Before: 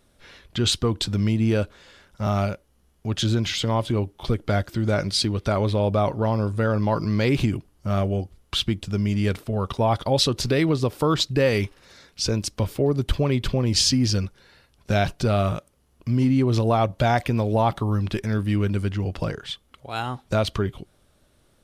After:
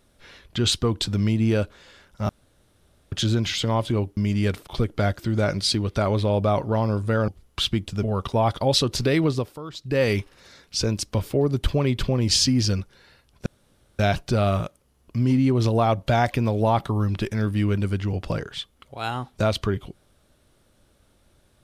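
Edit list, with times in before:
2.29–3.12 s: room tone
6.78–8.23 s: delete
8.98–9.48 s: move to 4.17 s
10.76–11.49 s: dip -15.5 dB, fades 0.27 s
14.91 s: insert room tone 0.53 s

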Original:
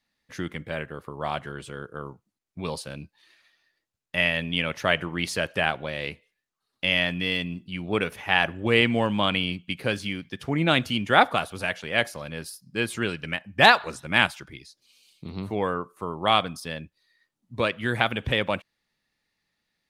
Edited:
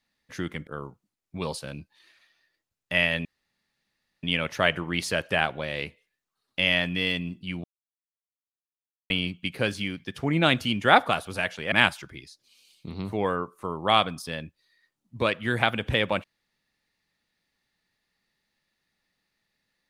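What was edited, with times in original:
0.67–1.90 s: delete
4.48 s: insert room tone 0.98 s
7.89–9.35 s: mute
11.97–14.10 s: delete

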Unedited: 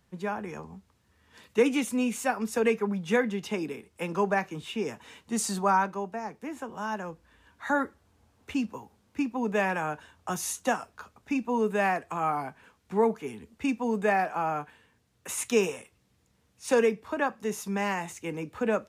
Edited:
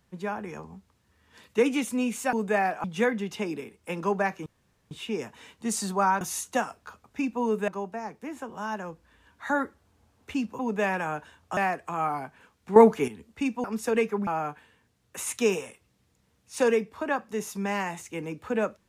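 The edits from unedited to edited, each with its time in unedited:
2.33–2.96 s: swap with 13.87–14.38 s
4.58 s: insert room tone 0.45 s
8.79–9.35 s: delete
10.33–11.80 s: move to 5.88 s
12.99–13.31 s: gain +9.5 dB

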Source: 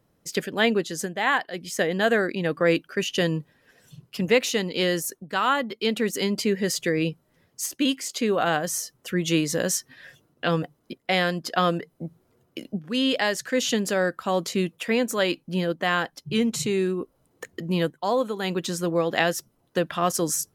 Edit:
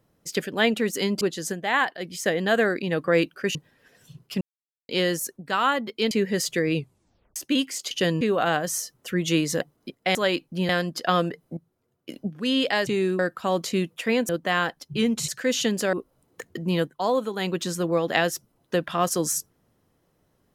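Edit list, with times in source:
3.08–3.38 s: move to 8.21 s
4.24–4.72 s: mute
5.94–6.41 s: move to 0.74 s
7.05 s: tape stop 0.61 s
9.61–10.64 s: delete
12.06–12.58 s: gain -10.5 dB
13.36–14.01 s: swap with 16.64–16.96 s
15.11–15.65 s: move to 11.18 s

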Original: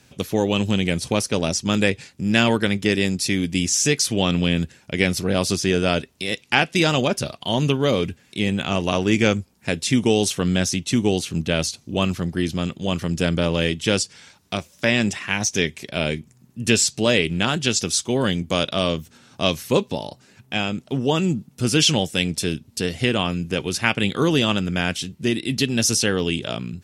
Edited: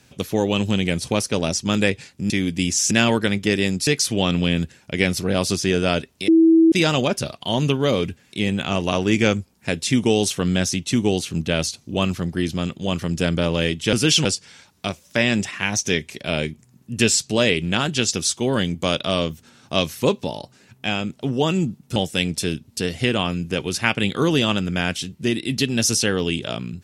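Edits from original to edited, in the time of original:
3.26–3.87 s: move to 2.30 s
6.28–6.72 s: bleep 326 Hz -9.5 dBFS
21.64–21.96 s: move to 13.93 s

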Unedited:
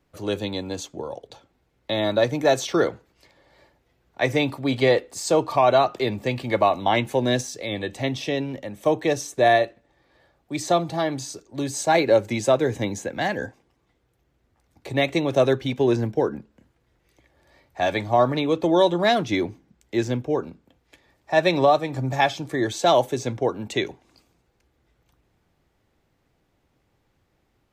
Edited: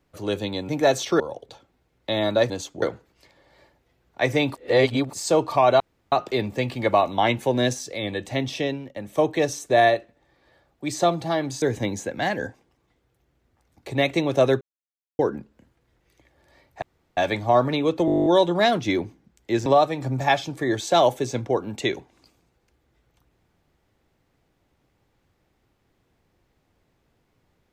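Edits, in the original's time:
0.69–1.01 s: swap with 2.31–2.82 s
4.55–5.13 s: reverse
5.80 s: insert room tone 0.32 s
8.32–8.64 s: fade out, to -14 dB
11.30–12.61 s: delete
15.60–16.18 s: mute
17.81 s: insert room tone 0.35 s
18.70 s: stutter 0.02 s, 11 plays
20.10–21.58 s: delete

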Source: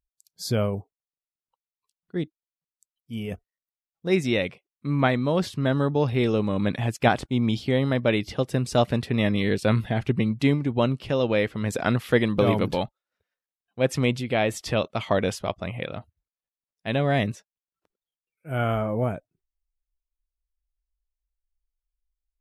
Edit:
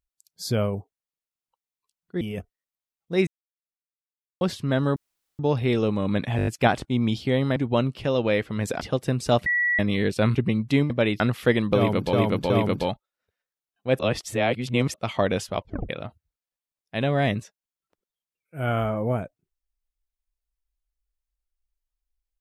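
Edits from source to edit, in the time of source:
2.21–3.15 s: delete
4.21–5.35 s: mute
5.90 s: insert room tone 0.43 s
6.88 s: stutter 0.02 s, 6 plays
7.97–8.27 s: swap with 10.61–11.86 s
8.92–9.25 s: bleep 1.94 kHz -19.5 dBFS
9.81–10.06 s: delete
12.42–12.79 s: loop, 3 plays
13.91–14.86 s: reverse
15.51 s: tape stop 0.30 s

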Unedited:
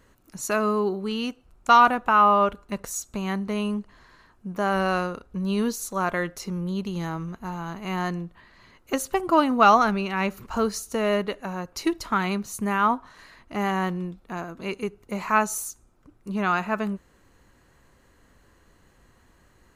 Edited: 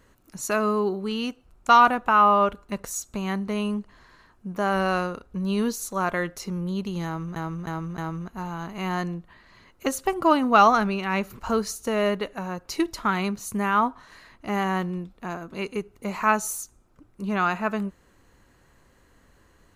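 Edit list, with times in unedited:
7.05–7.36 s: loop, 4 plays

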